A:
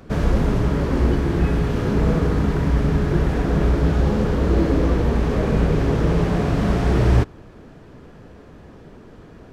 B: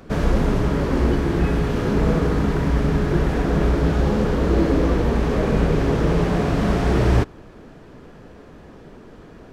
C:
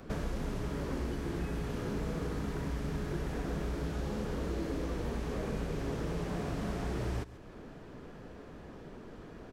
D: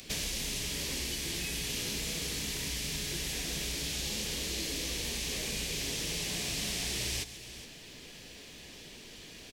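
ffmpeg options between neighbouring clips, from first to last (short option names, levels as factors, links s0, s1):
-af "equalizer=f=90:w=0.84:g=-4.5,volume=1.19"
-filter_complex "[0:a]aecho=1:1:137:0.0944,acrossover=split=2000|6100[s0][s1][s2];[s0]acompressor=threshold=0.0355:ratio=4[s3];[s1]acompressor=threshold=0.00316:ratio=4[s4];[s2]acompressor=threshold=0.00224:ratio=4[s5];[s3][s4][s5]amix=inputs=3:normalize=0,volume=0.531"
-af "aexciter=amount=14.6:drive=4.4:freq=2100,aecho=1:1:415:0.188,volume=0.501"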